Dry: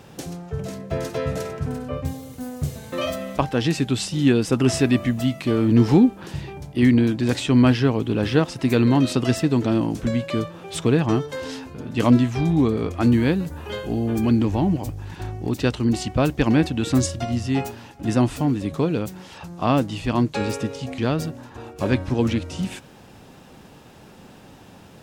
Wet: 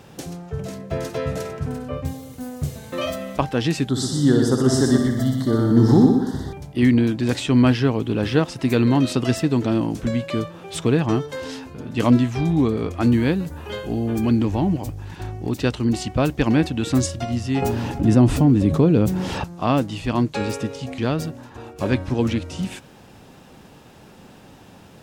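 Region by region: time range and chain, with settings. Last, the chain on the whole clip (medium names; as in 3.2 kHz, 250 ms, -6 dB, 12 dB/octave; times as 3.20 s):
3.89–6.53 s: Butterworth band-stop 2.5 kHz, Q 1.5 + multi-head delay 61 ms, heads first and second, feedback 48%, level -7 dB
17.62–19.44 s: tilt shelf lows +5.5 dB, about 640 Hz + level flattener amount 50%
whole clip: none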